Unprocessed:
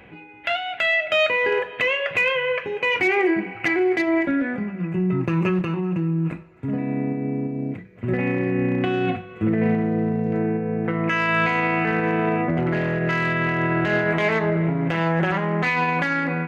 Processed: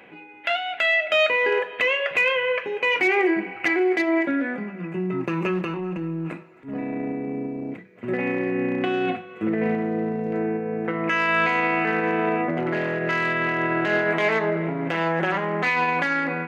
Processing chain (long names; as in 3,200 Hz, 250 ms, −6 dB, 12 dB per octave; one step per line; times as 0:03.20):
high-pass filter 250 Hz 12 dB per octave
0:05.44–0:07.74: transient designer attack −11 dB, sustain +3 dB